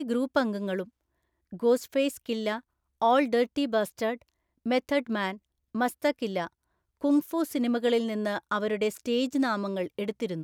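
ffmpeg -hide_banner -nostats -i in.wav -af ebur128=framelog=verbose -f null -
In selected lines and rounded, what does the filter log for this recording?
Integrated loudness:
  I:         -28.4 LUFS
  Threshold: -38.7 LUFS
Loudness range:
  LRA:         2.1 LU
  Threshold: -48.8 LUFS
  LRA low:   -30.0 LUFS
  LRA high:  -27.9 LUFS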